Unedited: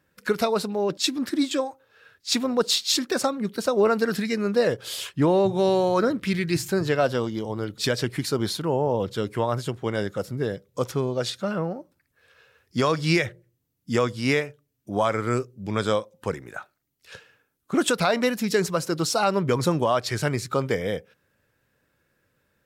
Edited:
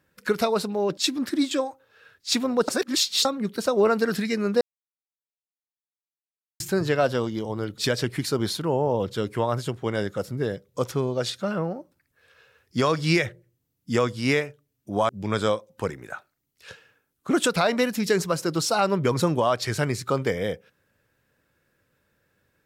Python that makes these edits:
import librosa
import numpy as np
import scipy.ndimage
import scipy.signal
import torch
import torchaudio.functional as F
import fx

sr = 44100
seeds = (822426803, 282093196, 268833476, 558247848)

y = fx.edit(x, sr, fx.reverse_span(start_s=2.68, length_s=0.57),
    fx.silence(start_s=4.61, length_s=1.99),
    fx.cut(start_s=15.09, length_s=0.44), tone=tone)